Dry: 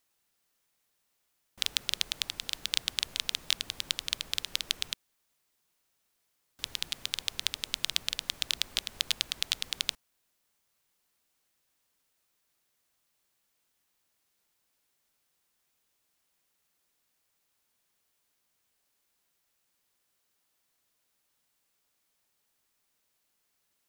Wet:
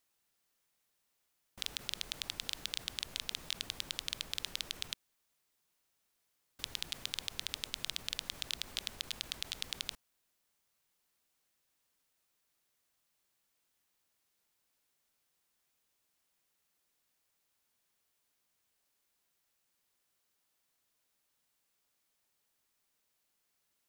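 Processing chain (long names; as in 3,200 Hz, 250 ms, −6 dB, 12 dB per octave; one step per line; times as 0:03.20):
brickwall limiter −10.5 dBFS, peak gain reduction 7.5 dB
output level in coarse steps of 14 dB
level +4 dB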